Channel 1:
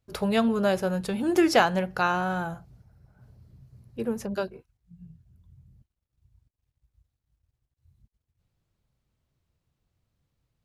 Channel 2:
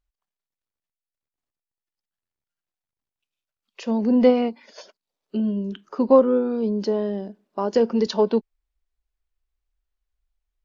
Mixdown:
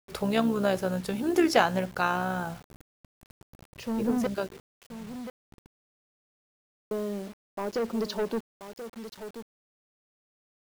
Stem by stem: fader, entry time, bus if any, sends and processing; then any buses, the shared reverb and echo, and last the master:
0.0 dB, 0.00 s, no send, no echo send, AM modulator 66 Hz, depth 30%
-5.0 dB, 0.00 s, muted 4.27–6.91, no send, echo send -11.5 dB, soft clip -19.5 dBFS, distortion -8 dB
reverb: off
echo: echo 1.031 s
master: requantised 8-bit, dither none

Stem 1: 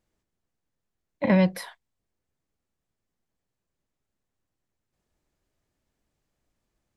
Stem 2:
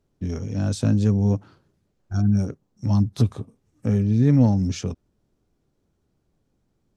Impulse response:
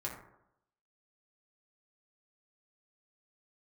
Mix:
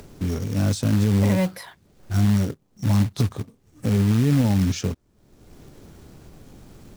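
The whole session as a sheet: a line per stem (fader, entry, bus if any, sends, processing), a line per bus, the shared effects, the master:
-1.5 dB, 0.00 s, no send, dry
+2.5 dB, 0.00 s, no send, dry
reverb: off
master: upward compressor, threshold -26 dBFS; short-mantissa float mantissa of 2-bit; limiter -11 dBFS, peak gain reduction 8.5 dB

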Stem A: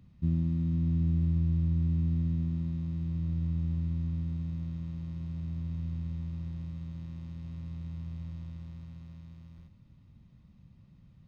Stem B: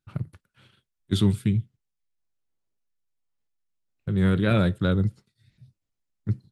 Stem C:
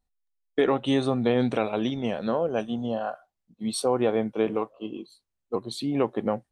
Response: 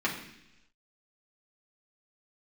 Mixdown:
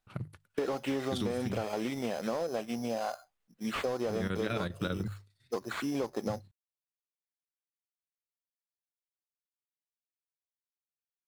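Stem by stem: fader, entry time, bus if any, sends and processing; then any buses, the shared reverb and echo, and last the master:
off
+0.5 dB, 0.00 s, no send, chopper 10 Hz, depth 65%, duty 75%
+1.0 dB, 0.00 s, no send, sample-rate reducer 5600 Hz, jitter 0%; slew limiter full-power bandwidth 61 Hz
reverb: off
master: low shelf 330 Hz -9 dB; notches 50/100/150 Hz; compressor, threshold -29 dBFS, peak gain reduction 9 dB

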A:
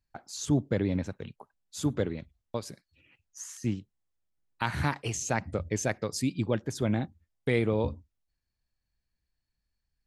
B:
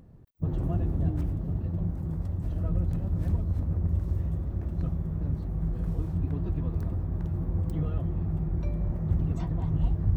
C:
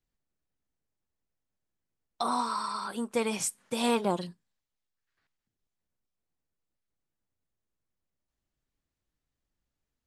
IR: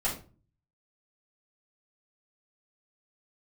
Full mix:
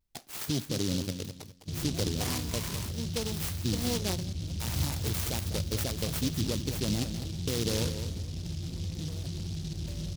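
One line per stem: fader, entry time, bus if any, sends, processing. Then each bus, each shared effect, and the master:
+0.5 dB, 0.00 s, no send, echo send -9 dB, limiter -22 dBFS, peak gain reduction 11.5 dB
-2.5 dB, 1.25 s, no send, no echo send, HPF 60 Hz 24 dB/oct; limiter -26.5 dBFS, peak gain reduction 10.5 dB
-5.0 dB, 0.00 s, no send, no echo send, LFO notch saw up 2.1 Hz 840–4000 Hz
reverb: off
echo: feedback echo 0.204 s, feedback 26%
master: vibrato 0.57 Hz 34 cents; noise-modulated delay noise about 4300 Hz, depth 0.23 ms

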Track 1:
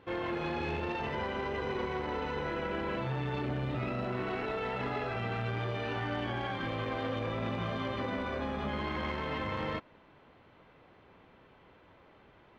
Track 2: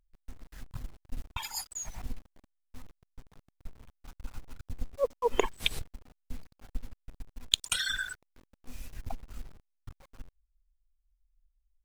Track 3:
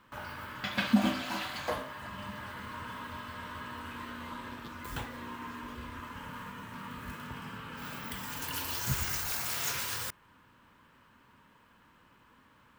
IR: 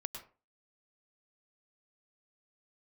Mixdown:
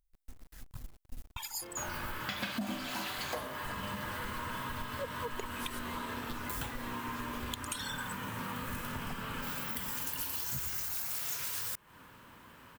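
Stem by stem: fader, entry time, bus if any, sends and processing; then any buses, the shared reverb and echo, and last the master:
-6.0 dB, 1.55 s, no send, compressor, threshold -39 dBFS, peak gain reduction 9 dB
-5.0 dB, 0.00 s, no send, soft clip -13.5 dBFS, distortion -14 dB
-2.5 dB, 1.65 s, no send, sine folder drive 4 dB, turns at -12.5 dBFS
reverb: off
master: high shelf 7400 Hz +11 dB; compressor 6:1, threshold -35 dBFS, peak gain reduction 16 dB

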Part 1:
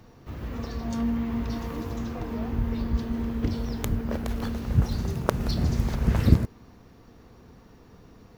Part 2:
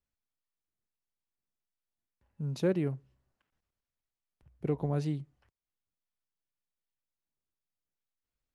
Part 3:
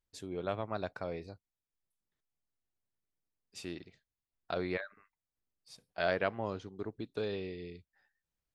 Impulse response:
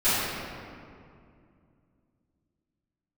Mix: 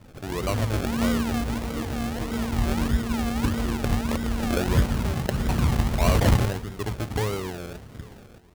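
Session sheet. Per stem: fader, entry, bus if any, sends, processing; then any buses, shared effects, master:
+2.5 dB, 0.00 s, no send, echo send -16.5 dB, dry
+0.5 dB, 0.00 s, no send, no echo send, half-waves squared off; attack slew limiter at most 170 dB/s; auto duck -10 dB, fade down 1.25 s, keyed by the third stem
+0.5 dB, 0.00 s, no send, echo send -24 dB, bell 110 Hz +14.5 dB 0.24 oct; sample leveller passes 2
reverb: off
echo: feedback echo 0.836 s, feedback 37%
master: overloaded stage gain 13 dB; high shelf 6000 Hz +7 dB; decimation with a swept rate 36×, swing 60% 1.6 Hz

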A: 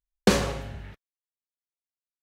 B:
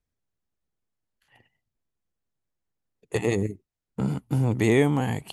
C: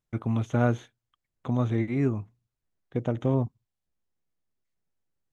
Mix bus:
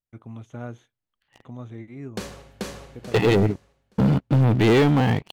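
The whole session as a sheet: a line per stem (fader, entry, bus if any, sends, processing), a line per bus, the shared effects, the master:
-5.5 dB, 1.90 s, no send, echo send -5 dB, vocal rider; auto duck -8 dB, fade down 1.20 s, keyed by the second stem
-10.0 dB, 0.00 s, no send, no echo send, steep low-pass 4400 Hz; AGC gain up to 12 dB; sample leveller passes 3
-12.0 dB, 0.00 s, no send, no echo send, dry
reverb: off
echo: feedback echo 0.436 s, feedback 30%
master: high shelf 7200 Hz +4.5 dB

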